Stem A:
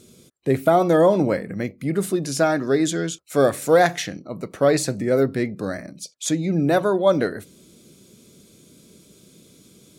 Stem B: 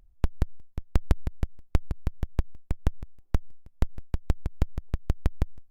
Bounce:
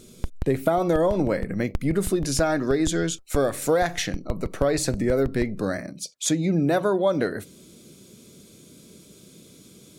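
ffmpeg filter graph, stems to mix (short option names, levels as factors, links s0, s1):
-filter_complex "[0:a]volume=1.19[s0];[1:a]volume=0.708[s1];[s0][s1]amix=inputs=2:normalize=0,acompressor=threshold=0.126:ratio=6"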